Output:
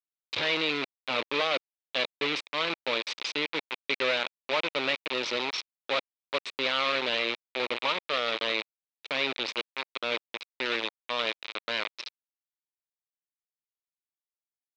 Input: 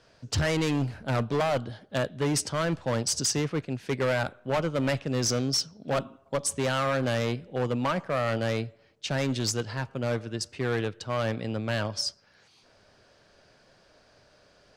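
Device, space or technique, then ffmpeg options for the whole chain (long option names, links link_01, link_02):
hand-held game console: -af "acrusher=bits=3:mix=0:aa=0.000001,highpass=480,equalizer=frequency=720:width_type=q:width=4:gain=-9,equalizer=frequency=1600:width_type=q:width=4:gain=-5,equalizer=frequency=2400:width_type=q:width=4:gain=8,equalizer=frequency=3800:width_type=q:width=4:gain=8,lowpass=frequency=4100:width=0.5412,lowpass=frequency=4100:width=1.3066,volume=-2dB"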